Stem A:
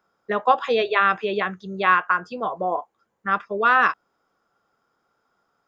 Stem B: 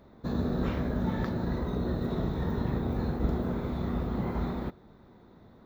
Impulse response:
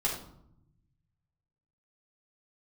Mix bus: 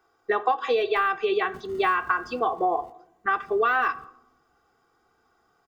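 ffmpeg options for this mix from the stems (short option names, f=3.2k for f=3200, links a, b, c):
-filter_complex "[0:a]deesser=0.75,aecho=1:1:2.6:0.92,volume=1dB,asplit=3[a][b][c];[b]volume=-21.5dB[d];[1:a]acompressor=threshold=-37dB:ratio=6,acrusher=samples=27:mix=1:aa=0.000001,adelay=1300,volume=-6.5dB,afade=t=out:st=2.05:d=0.4:silence=0.421697[e];[c]apad=whole_len=306540[f];[e][f]sidechaingate=range=-26dB:threshold=-34dB:ratio=16:detection=peak[g];[2:a]atrim=start_sample=2205[h];[d][h]afir=irnorm=-1:irlink=0[i];[a][g][i]amix=inputs=3:normalize=0,acompressor=threshold=-20dB:ratio=6"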